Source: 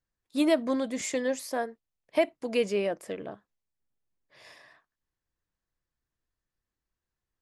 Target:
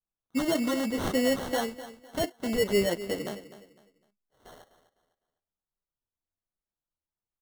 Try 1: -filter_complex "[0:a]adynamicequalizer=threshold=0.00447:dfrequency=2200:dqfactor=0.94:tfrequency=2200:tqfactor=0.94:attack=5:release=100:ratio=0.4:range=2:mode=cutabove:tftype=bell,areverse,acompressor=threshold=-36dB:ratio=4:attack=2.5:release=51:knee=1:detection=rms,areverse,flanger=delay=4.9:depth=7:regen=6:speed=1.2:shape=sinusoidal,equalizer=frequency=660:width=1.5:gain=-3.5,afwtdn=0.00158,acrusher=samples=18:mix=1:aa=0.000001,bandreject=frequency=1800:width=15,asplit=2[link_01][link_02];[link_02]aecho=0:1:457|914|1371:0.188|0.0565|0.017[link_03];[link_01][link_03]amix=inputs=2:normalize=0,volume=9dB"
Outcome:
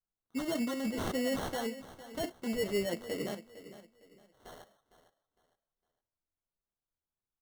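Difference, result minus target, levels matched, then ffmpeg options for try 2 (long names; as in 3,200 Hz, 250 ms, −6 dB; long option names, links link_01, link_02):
echo 204 ms late; downward compressor: peak gain reduction +7.5 dB
-filter_complex "[0:a]adynamicequalizer=threshold=0.00447:dfrequency=2200:dqfactor=0.94:tfrequency=2200:tqfactor=0.94:attack=5:release=100:ratio=0.4:range=2:mode=cutabove:tftype=bell,areverse,acompressor=threshold=-26dB:ratio=4:attack=2.5:release=51:knee=1:detection=rms,areverse,flanger=delay=4.9:depth=7:regen=6:speed=1.2:shape=sinusoidal,equalizer=frequency=660:width=1.5:gain=-3.5,afwtdn=0.00158,acrusher=samples=18:mix=1:aa=0.000001,bandreject=frequency=1800:width=15,asplit=2[link_01][link_02];[link_02]aecho=0:1:253|506|759:0.188|0.0565|0.017[link_03];[link_01][link_03]amix=inputs=2:normalize=0,volume=9dB"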